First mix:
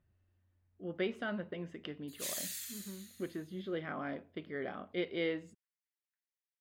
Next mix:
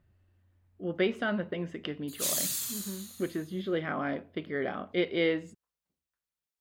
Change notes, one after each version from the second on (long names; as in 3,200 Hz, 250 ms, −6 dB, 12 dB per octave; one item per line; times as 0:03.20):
speech +7.5 dB
background: remove four-pole ladder high-pass 1,600 Hz, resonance 55%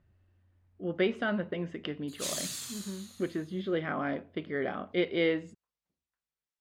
master: add high-frequency loss of the air 51 metres